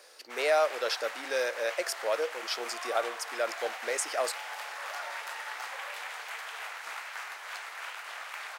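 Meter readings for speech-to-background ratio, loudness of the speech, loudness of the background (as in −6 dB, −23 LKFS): 7.0 dB, −32.0 LKFS, −39.0 LKFS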